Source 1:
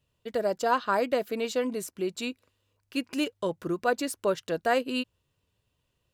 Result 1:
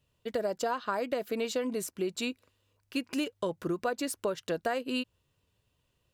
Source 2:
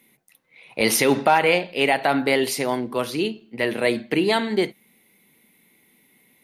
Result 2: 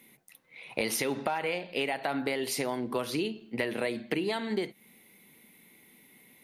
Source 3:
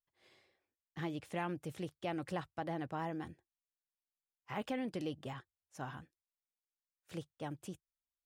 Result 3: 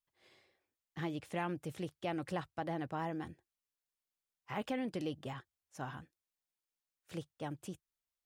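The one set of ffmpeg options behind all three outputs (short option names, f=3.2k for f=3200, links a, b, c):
-af "acompressor=threshold=-28dB:ratio=12,volume=1dB"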